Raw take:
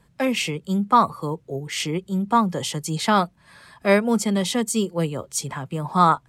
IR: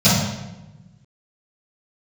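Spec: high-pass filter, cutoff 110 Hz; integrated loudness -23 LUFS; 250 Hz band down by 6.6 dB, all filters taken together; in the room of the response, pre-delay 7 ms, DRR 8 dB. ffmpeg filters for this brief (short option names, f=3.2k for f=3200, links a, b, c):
-filter_complex "[0:a]highpass=110,equalizer=f=250:t=o:g=-8.5,asplit=2[a][b];[1:a]atrim=start_sample=2205,adelay=7[c];[b][c]afir=irnorm=-1:irlink=0,volume=-30.5dB[d];[a][d]amix=inputs=2:normalize=0,volume=-2dB"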